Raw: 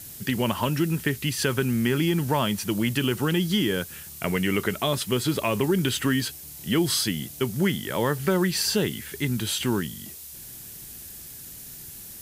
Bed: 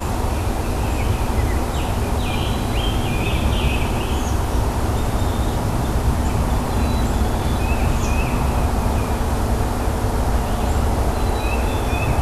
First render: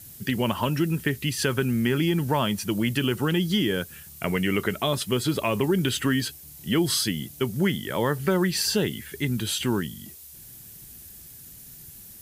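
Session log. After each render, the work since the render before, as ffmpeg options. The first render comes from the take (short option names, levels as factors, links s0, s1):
-af "afftdn=nr=6:nf=-42"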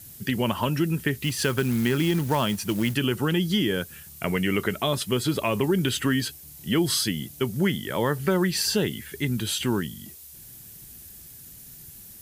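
-filter_complex "[0:a]asettb=1/sr,asplit=3[s0][s1][s2];[s0]atrim=end=1.204[s3];[s1]atrim=start=1.2:end=2.94,asetpts=PTS-STARTPTS,afade=t=in:d=0.004:c=qsin,afade=t=out:st=1.736:d=0.004:c=qsin,acrusher=bits=4:mode=log:mix=0:aa=0.000001[s4];[s2]atrim=start=2.936[s5];[s3][s4]acrossfade=d=0.004:c1=hsin:c2=qsin[s6];[s6][s5]acrossfade=d=0.004:c1=qsin:c2=hsin"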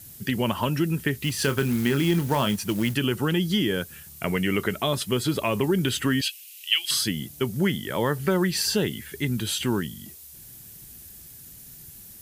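-filter_complex "[0:a]asettb=1/sr,asplit=3[s0][s1][s2];[s0]atrim=end=1.314[s3];[s1]atrim=start=1.31:end=2.56,asetpts=PTS-STARTPTS,afade=t=in:d=0.004:c=qsin,afade=t=out:st=1.246:d=0.004:c=qsin,asplit=2[s4][s5];[s5]adelay=29,volume=0.299[s6];[s4][s6]amix=inputs=2:normalize=0,atrim=end_sample=55125[s7];[s2]atrim=start=2.556[s8];[s3][s7]acrossfade=d=0.004:c1=hsin:c2=qsin[s9];[s9][s8]acrossfade=d=0.004:c1=qsin:c2=hsin,asettb=1/sr,asplit=3[s10][s11][s12];[s10]atrim=end=6.214[s13];[s11]atrim=start=6.21:end=6.91,asetpts=PTS-STARTPTS,afade=t=in:d=0.004:c=qsin,afade=t=out:st=0.696:d=0.004:c=qsin,highpass=f=2700:t=q:w=5.8[s14];[s12]atrim=start=6.906[s15];[s13][s14]acrossfade=d=0.004:c1=hsin:c2=qsin[s16];[s16][s15]acrossfade=d=0.004:c1=qsin:c2=hsin"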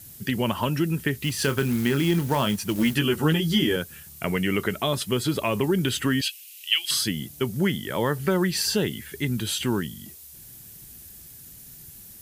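-filter_complex "[0:a]asettb=1/sr,asplit=3[s0][s1][s2];[s0]atrim=end=2.744[s3];[s1]atrim=start=2.74:end=3.76,asetpts=PTS-STARTPTS,afade=t=in:d=0.004:c=qsin,afade=t=out:st=1.016:d=0.004:c=qsin,asplit=2[s4][s5];[s5]adelay=13,volume=0.794[s6];[s4][s6]amix=inputs=2:normalize=0,atrim=end_sample=44982[s7];[s2]atrim=start=3.756[s8];[s3][s7]acrossfade=d=0.004:c1=hsin:c2=qsin[s9];[s9][s8]acrossfade=d=0.004:c1=qsin:c2=hsin"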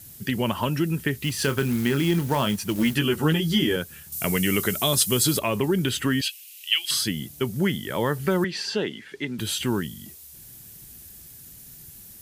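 -filter_complex "[0:a]asettb=1/sr,asplit=3[s0][s1][s2];[s0]atrim=end=4.124[s3];[s1]atrim=start=4.12:end=5.39,asetpts=PTS-STARTPTS,afade=t=in:d=0.004:c=qsin,afade=t=out:st=1.266:d=0.004:c=qsin,bass=f=250:g=2,treble=f=4000:g=14[s4];[s2]atrim=start=5.386[s5];[s3][s4]acrossfade=d=0.004:c1=hsin:c2=qsin[s6];[s6][s5]acrossfade=d=0.004:c1=qsin:c2=hsin,asettb=1/sr,asplit=3[s7][s8][s9];[s7]atrim=end=8.444[s10];[s8]atrim=start=8.44:end=9.39,asetpts=PTS-STARTPTS,afade=t=in:d=0.004:c=qsin,afade=t=out:st=0.946:d=0.004:c=qsin,highpass=250,lowpass=4200[s11];[s9]atrim=start=9.386[s12];[s10][s11]acrossfade=d=0.004:c1=hsin:c2=qsin[s13];[s13][s12]acrossfade=d=0.004:c1=qsin:c2=hsin"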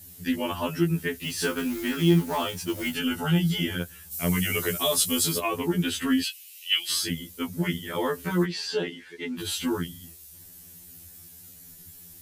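-af "afftfilt=real='re*2*eq(mod(b,4),0)':imag='im*2*eq(mod(b,4),0)':win_size=2048:overlap=0.75"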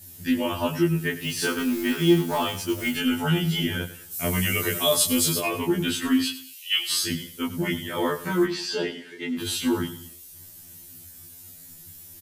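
-filter_complex "[0:a]asplit=2[s0][s1];[s1]adelay=20,volume=0.794[s2];[s0][s2]amix=inputs=2:normalize=0,aecho=1:1:99|198|297:0.188|0.064|0.0218"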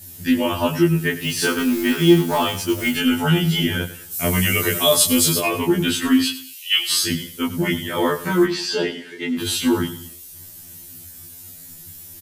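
-af "volume=1.88"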